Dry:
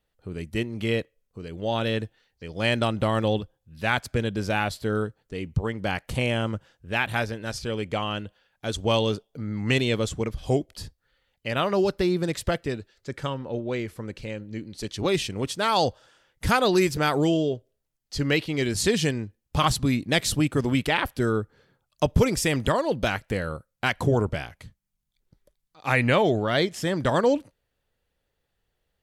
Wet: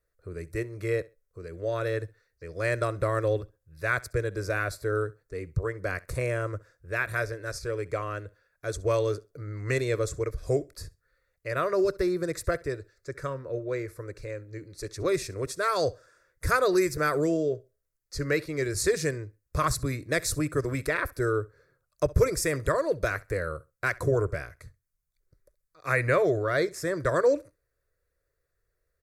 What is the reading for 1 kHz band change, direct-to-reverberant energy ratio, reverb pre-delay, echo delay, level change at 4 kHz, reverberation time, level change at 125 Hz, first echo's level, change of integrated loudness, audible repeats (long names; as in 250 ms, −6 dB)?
−4.5 dB, no reverb audible, no reverb audible, 66 ms, −11.5 dB, no reverb audible, −4.0 dB, −22.0 dB, −3.0 dB, 1